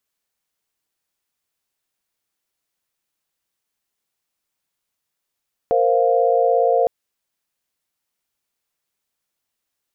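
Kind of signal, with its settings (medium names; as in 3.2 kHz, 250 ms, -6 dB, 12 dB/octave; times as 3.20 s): chord A#4/C5/F5 sine, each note -18 dBFS 1.16 s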